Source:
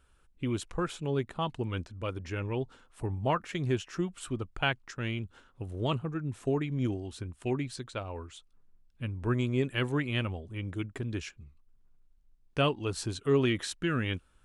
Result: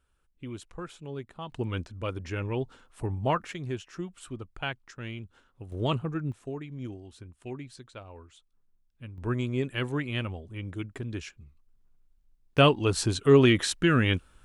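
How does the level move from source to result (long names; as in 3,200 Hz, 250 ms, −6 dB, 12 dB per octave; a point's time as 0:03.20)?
−7.5 dB
from 0:01.52 +2 dB
from 0:03.53 −4.5 dB
from 0:05.72 +2.5 dB
from 0:06.32 −7.5 dB
from 0:09.18 −0.5 dB
from 0:12.58 +7.5 dB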